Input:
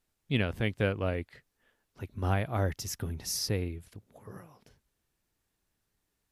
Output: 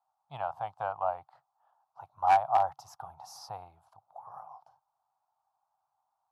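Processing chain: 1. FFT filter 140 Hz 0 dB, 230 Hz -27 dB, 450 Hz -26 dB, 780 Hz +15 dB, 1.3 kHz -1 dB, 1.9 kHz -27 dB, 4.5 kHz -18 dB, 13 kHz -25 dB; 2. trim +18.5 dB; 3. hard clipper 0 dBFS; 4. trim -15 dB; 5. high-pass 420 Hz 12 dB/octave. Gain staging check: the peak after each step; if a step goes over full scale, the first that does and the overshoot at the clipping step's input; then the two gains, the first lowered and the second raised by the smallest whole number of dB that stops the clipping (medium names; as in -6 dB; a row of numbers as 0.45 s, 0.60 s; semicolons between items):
-12.5 dBFS, +6.0 dBFS, 0.0 dBFS, -15.0 dBFS, -12.0 dBFS; step 2, 6.0 dB; step 2 +12.5 dB, step 4 -9 dB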